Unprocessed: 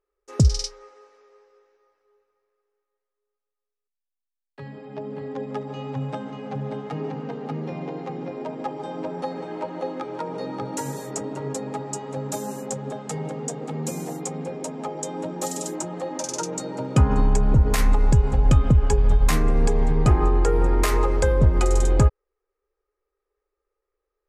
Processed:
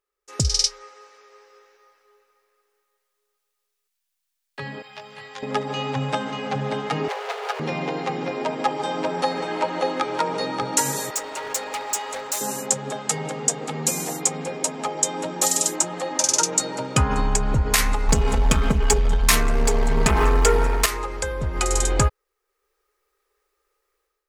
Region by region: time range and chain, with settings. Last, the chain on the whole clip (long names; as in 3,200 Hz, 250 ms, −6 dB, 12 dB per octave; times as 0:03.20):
0:04.82–0:05.43: guitar amp tone stack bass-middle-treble 10-0-10 + double-tracking delay 19 ms −4.5 dB
0:07.08–0:07.60: lower of the sound and its delayed copy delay 7.3 ms + Butterworth high-pass 410 Hz 72 dB per octave
0:11.10–0:12.41: high-pass filter 580 Hz + hard clipping −34.5 dBFS
0:18.08–0:20.86: leveller curve on the samples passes 2 + comb filter 4.5 ms, depth 76%
whole clip: tilt shelving filter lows −7.5 dB, about 900 Hz; automatic gain control; level −2.5 dB